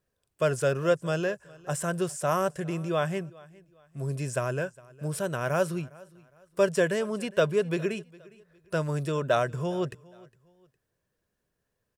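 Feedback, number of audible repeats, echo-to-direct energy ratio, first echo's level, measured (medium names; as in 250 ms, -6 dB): 33%, 2, -22.5 dB, -23.0 dB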